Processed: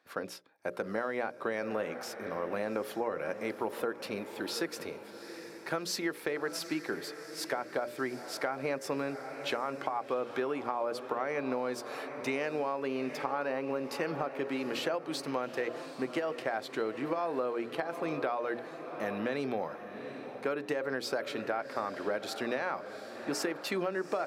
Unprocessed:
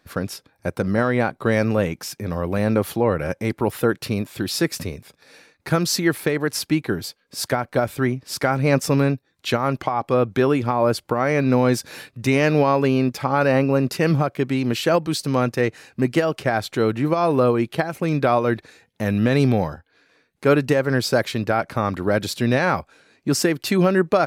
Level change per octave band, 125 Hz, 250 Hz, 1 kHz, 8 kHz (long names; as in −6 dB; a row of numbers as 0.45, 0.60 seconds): −26.5, −16.5, −11.5, −14.0 decibels